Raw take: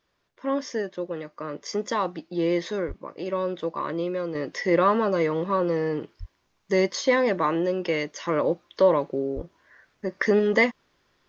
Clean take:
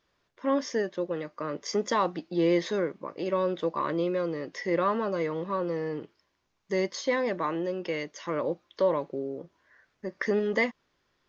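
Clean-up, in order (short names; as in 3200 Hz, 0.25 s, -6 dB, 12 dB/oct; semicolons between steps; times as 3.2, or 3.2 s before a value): de-plosive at 2.87/6.19/9.35; gain 0 dB, from 4.35 s -6 dB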